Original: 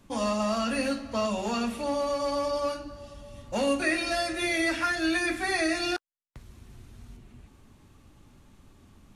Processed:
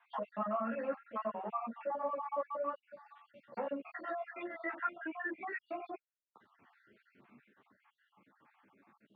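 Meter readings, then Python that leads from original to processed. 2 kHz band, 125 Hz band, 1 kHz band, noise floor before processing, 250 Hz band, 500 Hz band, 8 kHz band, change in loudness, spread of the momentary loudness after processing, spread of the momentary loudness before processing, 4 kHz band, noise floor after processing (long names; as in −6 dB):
−14.5 dB, below −15 dB, −7.0 dB, −58 dBFS, −15.5 dB, −10.5 dB, below −40 dB, −12.0 dB, 12 LU, 9 LU, below −30 dB, below −85 dBFS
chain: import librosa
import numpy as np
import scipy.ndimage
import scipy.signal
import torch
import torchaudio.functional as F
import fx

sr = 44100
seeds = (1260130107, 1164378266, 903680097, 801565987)

p1 = fx.spec_dropout(x, sr, seeds[0], share_pct=58)
p2 = np.clip(10.0 ** (28.0 / 20.0) * p1, -1.0, 1.0) / 10.0 ** (28.0 / 20.0)
p3 = p1 + (p2 * librosa.db_to_amplitude(-6.5))
p4 = scipy.signal.sosfilt(scipy.signal.butter(4, 150.0, 'highpass', fs=sr, output='sos'), p3)
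p5 = fx.dynamic_eq(p4, sr, hz=310.0, q=1.5, threshold_db=-42.0, ratio=4.0, max_db=-4)
p6 = fx.rider(p5, sr, range_db=10, speed_s=2.0)
p7 = fx.env_lowpass_down(p6, sr, base_hz=1200.0, full_db=-28.0)
p8 = scipy.signal.sosfilt(scipy.signal.butter(4, 2000.0, 'lowpass', fs=sr, output='sos'), p7)
p9 = fx.tilt_eq(p8, sr, slope=4.0)
p10 = fx.ensemble(p9, sr)
y = p10 * librosa.db_to_amplitude(-2.5)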